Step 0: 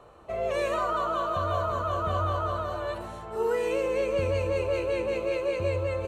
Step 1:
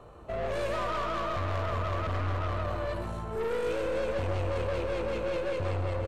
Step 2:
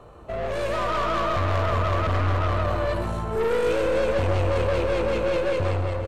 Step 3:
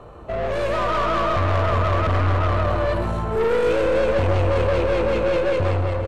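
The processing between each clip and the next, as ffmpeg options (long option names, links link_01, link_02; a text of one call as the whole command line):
ffmpeg -i in.wav -filter_complex "[0:a]lowshelf=frequency=290:gain=9,aeval=exprs='(tanh(28.2*val(0)+0.35)-tanh(0.35))/28.2':channel_layout=same,asplit=2[link_01][link_02];[link_02]aecho=0:1:127:0.335[link_03];[link_01][link_03]amix=inputs=2:normalize=0" out.wav
ffmpeg -i in.wav -af "dynaudnorm=framelen=560:gausssize=3:maxgain=4.5dB,volume=3.5dB" out.wav
ffmpeg -i in.wav -filter_complex "[0:a]highshelf=frequency=5300:gain=-8,asplit=2[link_01][link_02];[link_02]asoftclip=type=tanh:threshold=-30.5dB,volume=-8.5dB[link_03];[link_01][link_03]amix=inputs=2:normalize=0,volume=2.5dB" out.wav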